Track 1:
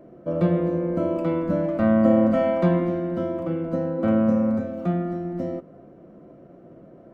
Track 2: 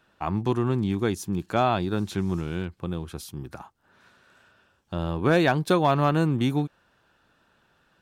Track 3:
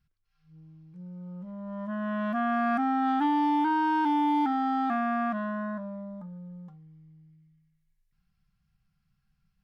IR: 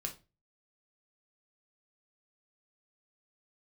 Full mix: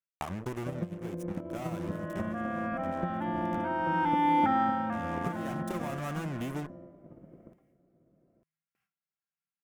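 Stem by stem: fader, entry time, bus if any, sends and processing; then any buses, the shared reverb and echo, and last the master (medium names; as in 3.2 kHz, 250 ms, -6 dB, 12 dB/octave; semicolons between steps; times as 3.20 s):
-12.0 dB, 0.40 s, bus A, no send, echo send -12.5 dB, bass shelf 250 Hz +8.5 dB
-18.5 dB, 0.00 s, bus A, no send, no echo send, fuzz box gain 37 dB, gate -32 dBFS
+2.5 dB, 0.00 s, no bus, no send, echo send -18.5 dB, gate with hold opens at -60 dBFS; high-pass 400 Hz 12 dB/octave; peaking EQ 2.1 kHz +5.5 dB 0.9 oct; auto duck -12 dB, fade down 0.30 s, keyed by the second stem
bus A: 0.0 dB, transient shaper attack +12 dB, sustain -1 dB; compression 10:1, threshold -32 dBFS, peak gain reduction 19 dB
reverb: none
echo: delay 899 ms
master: peaking EQ 4.3 kHz -9.5 dB 0.64 oct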